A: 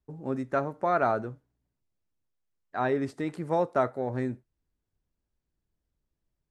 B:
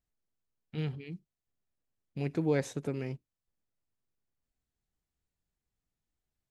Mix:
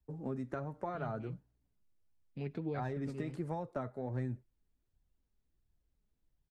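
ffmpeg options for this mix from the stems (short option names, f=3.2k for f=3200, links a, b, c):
-filter_complex "[0:a]volume=0dB[a];[1:a]highshelf=f=5.1k:t=q:w=1.5:g=-9,adelay=200,volume=-4dB[b];[a][b]amix=inputs=2:normalize=0,acrossover=split=140[c][d];[d]acompressor=threshold=-35dB:ratio=5[e];[c][e]amix=inputs=2:normalize=0,lowshelf=f=290:g=6,flanger=delay=1.1:depth=3.8:regen=52:speed=1.4:shape=sinusoidal"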